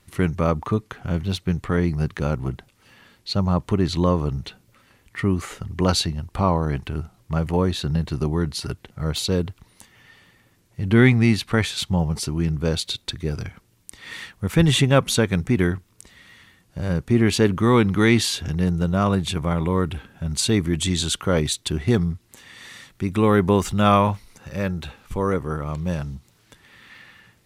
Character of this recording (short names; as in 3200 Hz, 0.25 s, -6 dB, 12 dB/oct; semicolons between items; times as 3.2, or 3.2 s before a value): noise floor -60 dBFS; spectral tilt -5.5 dB/oct